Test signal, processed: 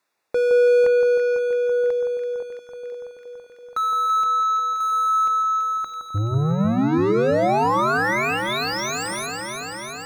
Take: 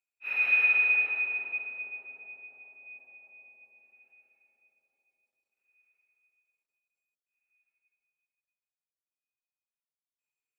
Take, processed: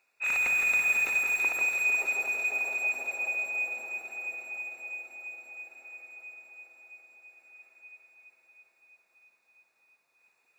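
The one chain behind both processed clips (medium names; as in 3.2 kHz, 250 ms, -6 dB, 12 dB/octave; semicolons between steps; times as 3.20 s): overdrive pedal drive 34 dB, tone 1.2 kHz, clips at -14.5 dBFS; Butterworth band-stop 3.1 kHz, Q 5.4; hum notches 60/120/180/240/300 Hz; echo whose repeats swap between lows and highs 166 ms, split 1.4 kHz, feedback 88%, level -5 dB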